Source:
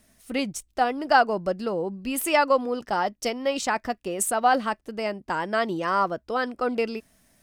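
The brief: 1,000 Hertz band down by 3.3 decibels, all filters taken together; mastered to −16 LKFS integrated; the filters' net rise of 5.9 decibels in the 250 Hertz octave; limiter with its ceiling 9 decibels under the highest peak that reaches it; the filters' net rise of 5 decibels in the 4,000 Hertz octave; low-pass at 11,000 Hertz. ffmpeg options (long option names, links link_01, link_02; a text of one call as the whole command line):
ffmpeg -i in.wav -af "lowpass=11000,equalizer=frequency=250:width_type=o:gain=7,equalizer=frequency=1000:width_type=o:gain=-5.5,equalizer=frequency=4000:width_type=o:gain=7.5,volume=11.5dB,alimiter=limit=-5dB:level=0:latency=1" out.wav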